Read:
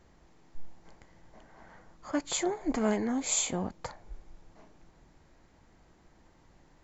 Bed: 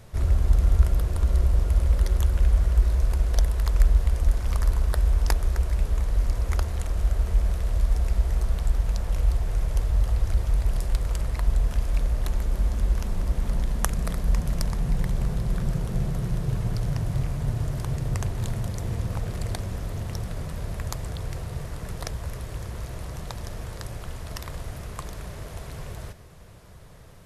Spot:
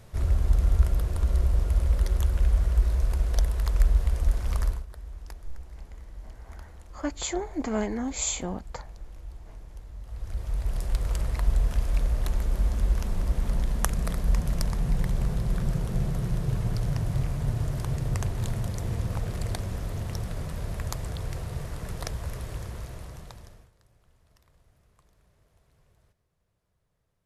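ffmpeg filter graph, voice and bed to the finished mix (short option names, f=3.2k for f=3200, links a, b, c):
-filter_complex "[0:a]adelay=4900,volume=0dB[a];[1:a]volume=16dB,afade=t=out:st=4.63:d=0.22:silence=0.141254,afade=t=in:st=10.03:d=1.09:silence=0.11885,afade=t=out:st=22.5:d=1.21:silence=0.0446684[b];[a][b]amix=inputs=2:normalize=0"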